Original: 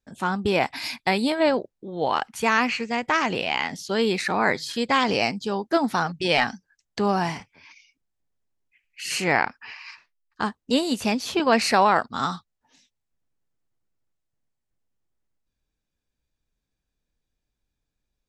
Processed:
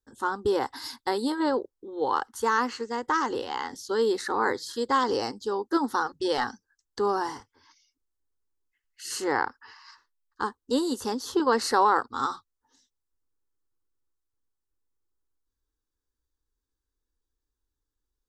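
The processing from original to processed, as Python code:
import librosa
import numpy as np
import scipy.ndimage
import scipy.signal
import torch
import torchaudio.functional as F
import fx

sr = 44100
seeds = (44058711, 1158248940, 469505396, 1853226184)

y = fx.dynamic_eq(x, sr, hz=570.0, q=0.95, threshold_db=-34.0, ratio=4.0, max_db=4)
y = fx.fixed_phaser(y, sr, hz=650.0, stages=6)
y = y * librosa.db_to_amplitude(-2.0)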